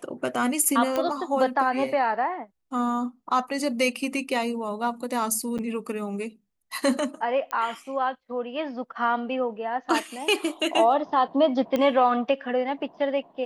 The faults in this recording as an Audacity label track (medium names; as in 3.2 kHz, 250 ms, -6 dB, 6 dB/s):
0.960000	0.960000	pop -13 dBFS
5.580000	5.590000	dropout 7.3 ms
7.510000	7.510000	pop -17 dBFS
11.760000	11.760000	pop -13 dBFS